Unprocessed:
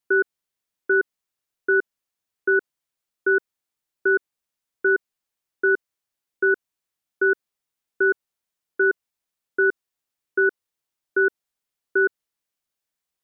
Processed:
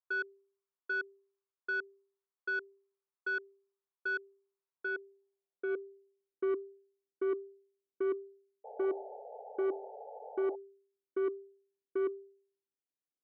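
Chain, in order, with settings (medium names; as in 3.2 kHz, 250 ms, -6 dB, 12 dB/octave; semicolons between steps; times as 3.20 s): Bessel low-pass 1.5 kHz; de-hum 196.7 Hz, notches 3; band-pass sweep 1.1 kHz -> 330 Hz, 4.62–6.56 s; saturation -23.5 dBFS, distortion -16 dB; painted sound noise, 8.64–10.56 s, 410–890 Hz -44 dBFS; trim -3.5 dB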